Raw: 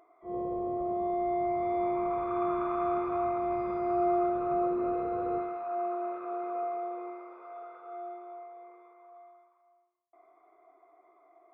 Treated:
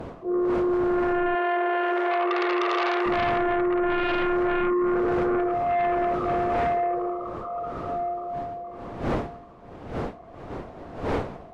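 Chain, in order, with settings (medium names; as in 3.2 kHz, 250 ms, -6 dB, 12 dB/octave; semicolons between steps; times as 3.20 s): resonances exaggerated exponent 2; wind noise 560 Hz -46 dBFS; in parallel at -5 dB: sine folder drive 12 dB, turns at -19 dBFS; 1.35–3.06 s: on the sum: brick-wall FIR high-pass 330 Hz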